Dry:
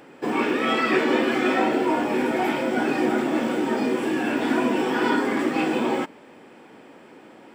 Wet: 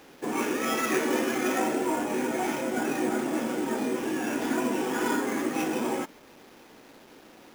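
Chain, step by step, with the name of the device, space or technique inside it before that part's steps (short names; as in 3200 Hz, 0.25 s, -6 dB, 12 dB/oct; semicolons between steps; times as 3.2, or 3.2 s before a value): early 8-bit sampler (sample-rate reducer 8400 Hz, jitter 0%; bit-crush 8-bit); gain -5.5 dB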